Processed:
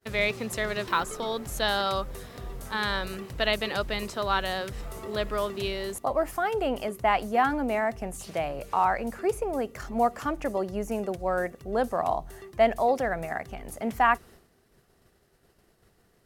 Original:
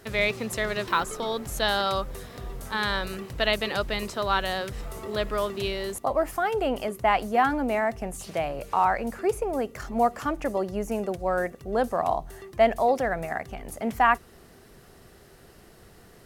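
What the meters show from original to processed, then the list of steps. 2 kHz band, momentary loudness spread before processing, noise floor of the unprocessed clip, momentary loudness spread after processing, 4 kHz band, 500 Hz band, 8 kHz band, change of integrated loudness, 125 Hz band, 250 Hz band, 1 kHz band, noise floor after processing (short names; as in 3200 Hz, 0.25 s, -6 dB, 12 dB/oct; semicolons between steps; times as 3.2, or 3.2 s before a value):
-1.5 dB, 9 LU, -53 dBFS, 9 LU, -1.5 dB, -1.5 dB, -1.5 dB, -1.5 dB, -1.5 dB, -1.5 dB, -1.5 dB, -65 dBFS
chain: expander -43 dBFS; gain -1.5 dB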